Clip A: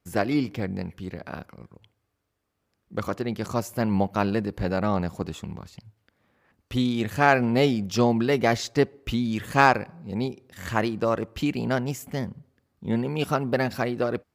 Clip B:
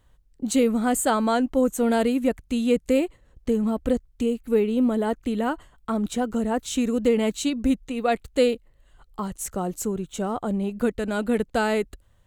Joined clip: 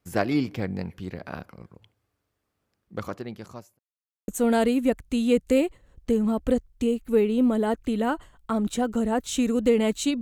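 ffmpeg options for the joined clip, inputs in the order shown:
-filter_complex "[0:a]apad=whole_dur=10.21,atrim=end=10.21,asplit=2[s0][s1];[s0]atrim=end=3.79,asetpts=PTS-STARTPTS,afade=t=out:st=2.58:d=1.21[s2];[s1]atrim=start=3.79:end=4.28,asetpts=PTS-STARTPTS,volume=0[s3];[1:a]atrim=start=1.67:end=7.6,asetpts=PTS-STARTPTS,afade=t=in:d=0.004:c=hsin[s4];[s2][s3][s4]concat=n=3:v=0:a=1"

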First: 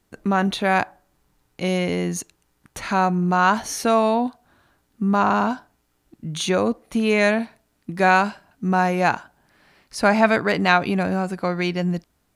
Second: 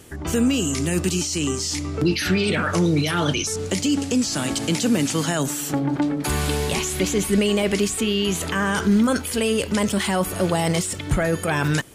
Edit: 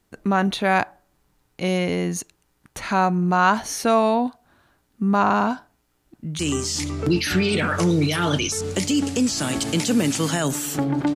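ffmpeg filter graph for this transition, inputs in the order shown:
-filter_complex "[0:a]apad=whole_dur=11.15,atrim=end=11.15,atrim=end=6.392[s0];[1:a]atrim=start=1.338:end=6.1[s1];[s0][s1]acrossfade=d=0.004:c1=hsin:c2=hsin,asplit=2[s2][s3];[s3]afade=t=in:st=5.64:d=0.01,afade=t=out:st=6.39:d=0.01,aecho=0:1:500|1000:0.251189|0.0251189[s4];[s2][s4]amix=inputs=2:normalize=0"

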